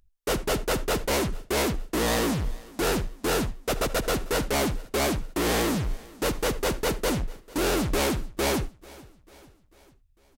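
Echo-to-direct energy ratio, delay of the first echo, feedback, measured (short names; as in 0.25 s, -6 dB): -21.0 dB, 0.445 s, 54%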